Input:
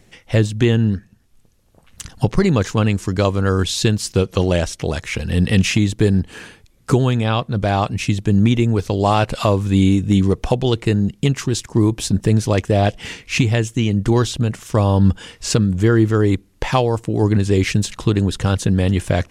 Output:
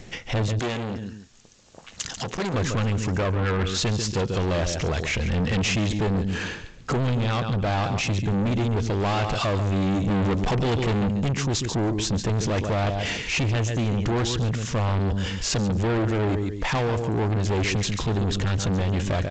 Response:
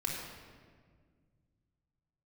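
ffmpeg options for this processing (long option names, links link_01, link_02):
-filter_complex "[0:a]asplit=3[link_01][link_02][link_03];[link_01]afade=type=out:start_time=3.15:duration=0.02[link_04];[link_02]highshelf=frequency=3000:width_type=q:width=1.5:gain=-13.5,afade=type=in:start_time=3.15:duration=0.02,afade=type=out:start_time=3.74:duration=0.02[link_05];[link_03]afade=type=in:start_time=3.74:duration=0.02[link_06];[link_04][link_05][link_06]amix=inputs=3:normalize=0,asettb=1/sr,asplit=3[link_07][link_08][link_09];[link_07]atrim=end=10.074[link_10];[link_08]atrim=start=10.07:end=11.09,asetpts=PTS-STARTPTS,afade=type=in:duration=0.004:curve=qsin,afade=type=out:start_time=1.016:duration=0.004:curve=qsin,acontrast=82[link_11];[link_09]atrim=start=11.086[link_12];[link_10][link_11]acrossfade=duration=0.004:curve1=hsin:curve2=qsin[link_13];[link_13][link_12]acrossfade=duration=0.004:curve1=qsin:curve2=hsin,aecho=1:1:141|282:0.224|0.047,asoftclip=type=tanh:threshold=-23dB,alimiter=level_in=5.5dB:limit=-24dB:level=0:latency=1:release=42,volume=-5.5dB,asettb=1/sr,asplit=3[link_14][link_15][link_16];[link_14]atrim=end=0.594[link_17];[link_15]atrim=start=0.59:end=2.54,asetpts=PTS-STARTPTS,afade=type=in:duration=0.004:curve=qsin,afade=type=out:start_time=1.946:duration=0.004:curve=qsin,aemphasis=mode=production:type=bsi[link_18];[link_16]atrim=start=2.536[link_19];[link_17][link_18]acrossfade=duration=0.004:curve1=hsin:curve2=qsin[link_20];[link_20][link_19]acrossfade=duration=0.004:curve1=qsin:curve2=hsin,volume=8.5dB" -ar 16000 -c:a g722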